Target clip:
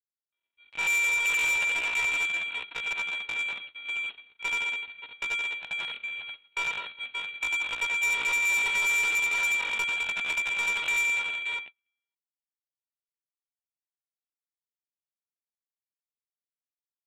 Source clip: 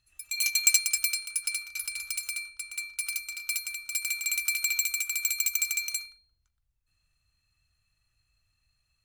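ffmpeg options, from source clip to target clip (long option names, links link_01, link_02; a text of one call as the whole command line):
ffmpeg -i in.wav -filter_complex "[0:a]asplit=2[link_01][link_02];[link_02]adelay=40,volume=-5dB[link_03];[link_01][link_03]amix=inputs=2:normalize=0,aresample=8000,acrusher=bits=6:dc=4:mix=0:aa=0.000001,aresample=44100,highpass=frequency=390:poles=1,aecho=1:1:46|109|199|306:0.668|0.447|0.168|0.398,agate=range=-39dB:threshold=-39dB:ratio=16:detection=peak,asoftclip=type=tanh:threshold=-29.5dB,atempo=0.53,volume=6.5dB" out.wav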